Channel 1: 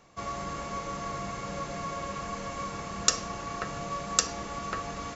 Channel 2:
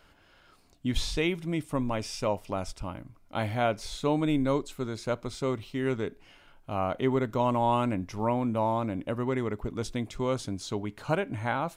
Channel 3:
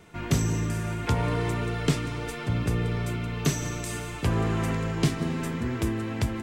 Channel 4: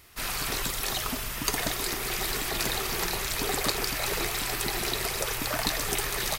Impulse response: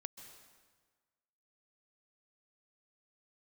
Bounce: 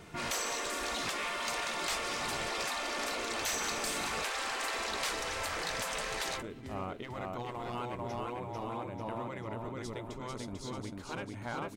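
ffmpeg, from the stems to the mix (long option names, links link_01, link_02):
-filter_complex "[0:a]highpass=frequency=160:width=0.5412,highpass=frequency=160:width=1.3066,lowpass=1200,volume=-5dB[link_01];[1:a]volume=18.5dB,asoftclip=hard,volume=-18.5dB,volume=-7.5dB,asplit=2[link_02][link_03];[link_03]volume=-3.5dB[link_04];[2:a]volume=0.5dB,asplit=2[link_05][link_06];[link_06]volume=-22.5dB[link_07];[3:a]lowpass=frequency=8200:width=0.5412,lowpass=frequency=8200:width=1.3066,volume=-6.5dB[link_08];[link_04][link_07]amix=inputs=2:normalize=0,aecho=0:1:444|888|1332|1776|2220|2664|3108:1|0.51|0.26|0.133|0.0677|0.0345|0.0176[link_09];[link_01][link_02][link_05][link_08][link_09]amix=inputs=5:normalize=0,afftfilt=real='re*lt(hypot(re,im),0.1)':imag='im*lt(hypot(re,im),0.1)':win_size=1024:overlap=0.75,asoftclip=type=tanh:threshold=-26.5dB"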